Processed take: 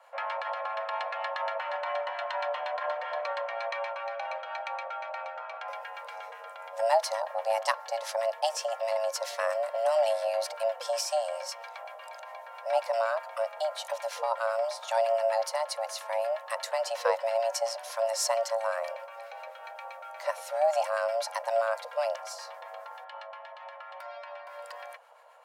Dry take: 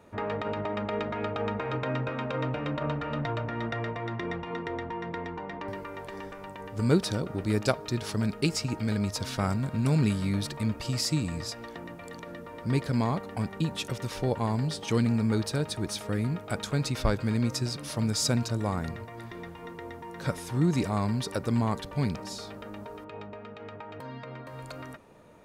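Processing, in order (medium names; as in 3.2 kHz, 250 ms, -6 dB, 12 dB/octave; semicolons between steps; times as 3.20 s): frequency shift +450 Hz; peaking EQ 230 Hz +4.5 dB 1.7 oct; harmonic tremolo 7.6 Hz, depth 50%, crossover 1.1 kHz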